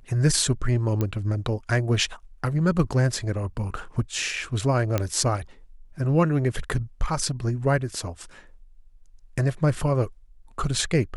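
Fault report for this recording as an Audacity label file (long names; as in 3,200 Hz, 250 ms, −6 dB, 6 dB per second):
1.010000	1.010000	click −13 dBFS
4.980000	4.980000	click −10 dBFS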